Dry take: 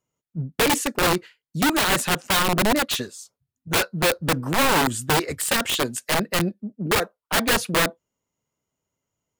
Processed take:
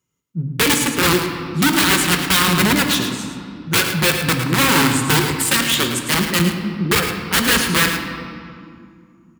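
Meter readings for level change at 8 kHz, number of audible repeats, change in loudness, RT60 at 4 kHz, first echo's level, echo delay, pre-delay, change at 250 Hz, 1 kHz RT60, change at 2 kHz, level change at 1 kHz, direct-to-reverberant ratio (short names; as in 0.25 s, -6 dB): +6.5 dB, 1, +5.5 dB, 1.5 s, -8.5 dB, 0.108 s, 5 ms, +7.0 dB, 2.2 s, +6.5 dB, +2.5 dB, 2.5 dB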